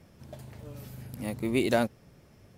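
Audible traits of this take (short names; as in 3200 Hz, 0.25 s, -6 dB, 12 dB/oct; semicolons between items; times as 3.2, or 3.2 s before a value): noise floor -58 dBFS; spectral tilt -5.0 dB/oct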